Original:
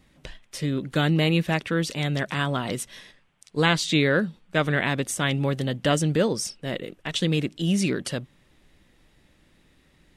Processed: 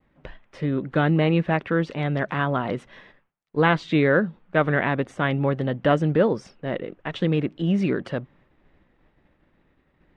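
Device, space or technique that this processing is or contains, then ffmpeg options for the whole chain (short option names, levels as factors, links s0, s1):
hearing-loss simulation: -af "lowpass=1500,agate=range=0.0224:threshold=0.00178:ratio=3:detection=peak,lowshelf=f=350:g=-5.5,volume=1.88"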